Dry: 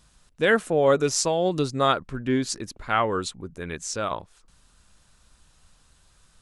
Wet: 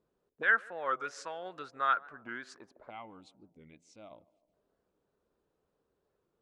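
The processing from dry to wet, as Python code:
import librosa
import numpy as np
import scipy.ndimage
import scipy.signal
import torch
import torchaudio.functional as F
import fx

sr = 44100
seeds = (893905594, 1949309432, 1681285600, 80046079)

p1 = fx.spec_box(x, sr, start_s=2.9, length_s=1.63, low_hz=330.0, high_hz=2000.0, gain_db=-18)
p2 = fx.auto_wah(p1, sr, base_hz=400.0, top_hz=1500.0, q=3.9, full_db=-22.5, direction='up')
p3 = p2 + fx.echo_banded(p2, sr, ms=151, feedback_pct=63, hz=430.0, wet_db=-19.0, dry=0)
y = fx.record_warp(p3, sr, rpm=45.0, depth_cents=160.0)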